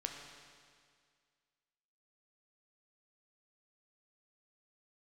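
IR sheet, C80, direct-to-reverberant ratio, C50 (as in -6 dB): 5.0 dB, 2.0 dB, 4.0 dB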